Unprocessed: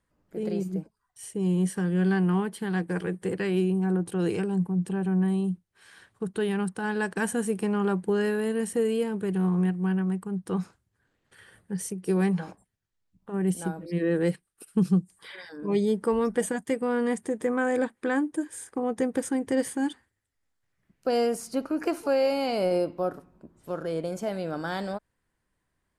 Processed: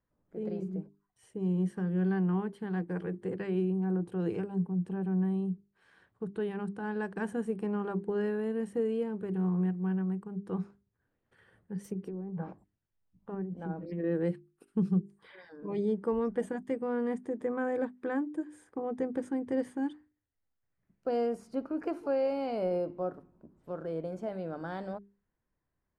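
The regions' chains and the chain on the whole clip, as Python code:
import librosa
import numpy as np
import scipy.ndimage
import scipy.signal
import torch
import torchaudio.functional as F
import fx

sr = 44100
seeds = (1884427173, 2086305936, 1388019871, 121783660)

y = fx.chain(x, sr, fx.resample_bad(factor=2, down='none', up='zero_stuff'),
    fx.env_lowpass_down(base_hz=680.0, full_db=-17.0),
    fx.over_compress(threshold_db=-30.0, ratio=-1.0), at=(11.84, 14.04))
y = fx.lowpass(y, sr, hz=1000.0, slope=6)
y = fx.hum_notches(y, sr, base_hz=50, count=8)
y = F.gain(torch.from_numpy(y), -4.5).numpy()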